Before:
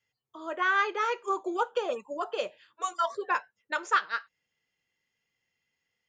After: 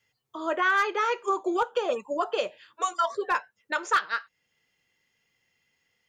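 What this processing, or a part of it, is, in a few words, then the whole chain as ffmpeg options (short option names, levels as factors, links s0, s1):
clipper into limiter: -af "asoftclip=type=hard:threshold=0.126,alimiter=limit=0.0631:level=0:latency=1:release=416,volume=2.51"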